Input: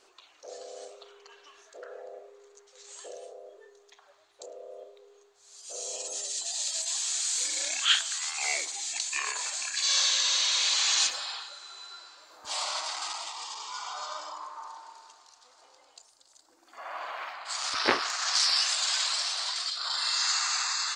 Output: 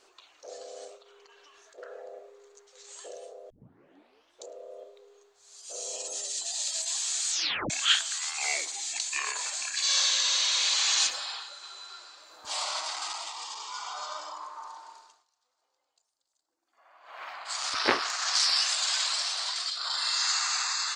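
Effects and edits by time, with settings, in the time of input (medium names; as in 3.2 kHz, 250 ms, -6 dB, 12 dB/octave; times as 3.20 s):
0.96–1.78 s: compression, threshold -52 dBFS
3.50 s: tape start 0.96 s
7.30 s: tape stop 0.40 s
11.38–11.87 s: echo throw 250 ms, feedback 65%, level -9.5 dB
14.94–17.35 s: dip -20 dB, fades 0.32 s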